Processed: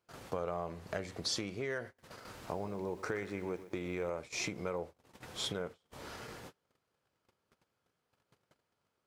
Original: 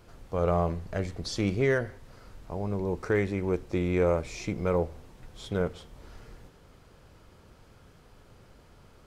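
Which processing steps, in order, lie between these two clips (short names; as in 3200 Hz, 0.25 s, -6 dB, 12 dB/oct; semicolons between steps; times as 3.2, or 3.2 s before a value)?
compressor 20:1, threshold -39 dBFS, peak gain reduction 19 dB; gate -49 dBFS, range -31 dB; HPF 100 Hz 12 dB/oct; low shelf 350 Hz -9 dB; 1.86–4.1 lo-fi delay 0.124 s, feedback 55%, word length 11-bit, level -14.5 dB; gain +9 dB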